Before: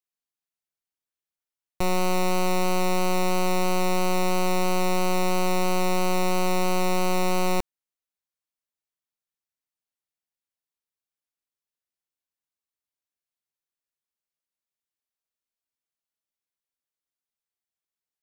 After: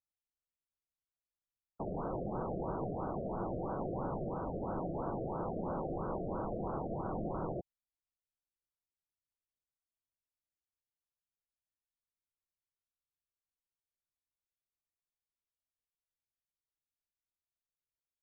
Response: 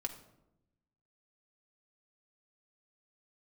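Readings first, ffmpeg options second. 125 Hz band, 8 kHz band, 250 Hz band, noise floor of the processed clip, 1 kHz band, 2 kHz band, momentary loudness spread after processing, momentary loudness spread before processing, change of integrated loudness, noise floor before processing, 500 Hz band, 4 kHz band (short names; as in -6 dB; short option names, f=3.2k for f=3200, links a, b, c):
-10.5 dB, under -40 dB, -12.0 dB, under -85 dBFS, -14.5 dB, -27.5 dB, 2 LU, 1 LU, -13.5 dB, under -85 dBFS, -12.0 dB, under -40 dB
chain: -af "aeval=exprs='max(val(0),0)':c=same,afftfilt=real='hypot(re,im)*cos(2*PI*random(0))':imag='hypot(re,im)*sin(2*PI*random(1))':win_size=512:overlap=0.75,afftfilt=real='re*lt(b*sr/1024,710*pow(1700/710,0.5+0.5*sin(2*PI*3*pts/sr)))':imag='im*lt(b*sr/1024,710*pow(1700/710,0.5+0.5*sin(2*PI*3*pts/sr)))':win_size=1024:overlap=0.75"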